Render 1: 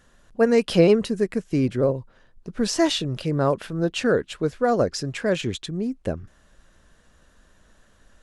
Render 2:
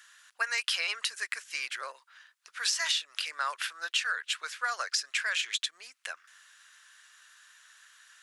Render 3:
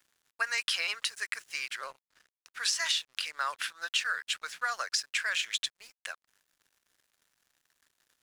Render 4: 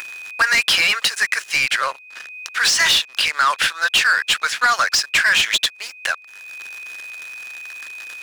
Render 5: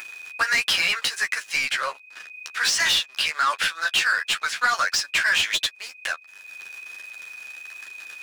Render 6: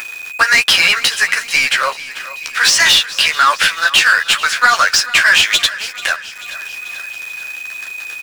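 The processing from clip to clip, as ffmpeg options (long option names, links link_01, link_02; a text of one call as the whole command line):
ffmpeg -i in.wav -af "highpass=frequency=1400:width=0.5412,highpass=frequency=1400:width=1.3066,acompressor=threshold=-34dB:ratio=6,volume=7.5dB" out.wav
ffmpeg -i in.wav -af "aeval=exprs='sgn(val(0))*max(abs(val(0))-0.00237,0)':channel_layout=same" out.wav
ffmpeg -i in.wav -filter_complex "[0:a]aeval=exprs='val(0)+0.000631*sin(2*PI*2500*n/s)':channel_layout=same,asplit=2[link_01][link_02];[link_02]highpass=frequency=720:poles=1,volume=22dB,asoftclip=type=tanh:threshold=-13dB[link_03];[link_01][link_03]amix=inputs=2:normalize=0,lowpass=frequency=5600:poles=1,volume=-6dB,acompressor=mode=upward:threshold=-31dB:ratio=2.5,volume=6.5dB" out.wav
ffmpeg -i in.wav -af "flanger=delay=9.7:depth=4:regen=13:speed=1.4:shape=triangular,volume=-2dB" out.wav
ffmpeg -i in.wav -filter_complex "[0:a]asplit=2[link_01][link_02];[link_02]acrusher=bits=6:mix=0:aa=0.000001,volume=-3.5dB[link_03];[link_01][link_03]amix=inputs=2:normalize=0,aecho=1:1:438|876|1314|1752|2190:0.15|0.0868|0.0503|0.0292|0.0169,volume=6dB" out.wav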